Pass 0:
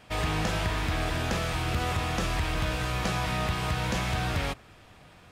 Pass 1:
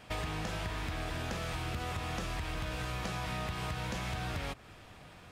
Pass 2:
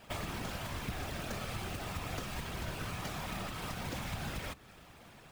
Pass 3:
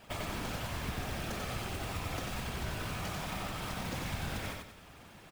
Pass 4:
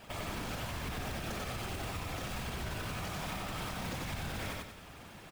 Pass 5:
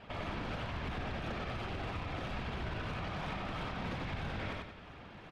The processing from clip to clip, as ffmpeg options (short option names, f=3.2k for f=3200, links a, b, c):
-af "acompressor=threshold=-34dB:ratio=6"
-af "acrusher=bits=2:mode=log:mix=0:aa=0.000001,afftfilt=real='hypot(re,im)*cos(2*PI*random(0))':imag='hypot(re,im)*sin(2*PI*random(1))':win_size=512:overlap=0.75,volume=3dB"
-af "aecho=1:1:92|184|276|368|460:0.668|0.234|0.0819|0.0287|0.01"
-af "alimiter=level_in=8.5dB:limit=-24dB:level=0:latency=1:release=65,volume=-8.5dB,volume=3dB"
-filter_complex "[0:a]acrossover=split=4600[a][b];[b]acrusher=samples=33:mix=1:aa=0.000001:lfo=1:lforange=33:lforate=3[c];[a][c]amix=inputs=2:normalize=0,adynamicsmooth=sensitivity=5:basefreq=7.7k"